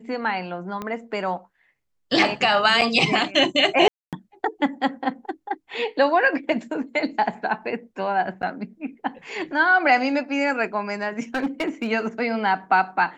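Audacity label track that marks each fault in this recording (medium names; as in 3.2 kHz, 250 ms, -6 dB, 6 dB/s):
0.820000	0.820000	pop -17 dBFS
2.810000	2.820000	dropout 7.2 ms
3.880000	4.130000	dropout 247 ms
8.420000	8.430000	dropout 9.1 ms
11.350000	11.910000	clipped -19 dBFS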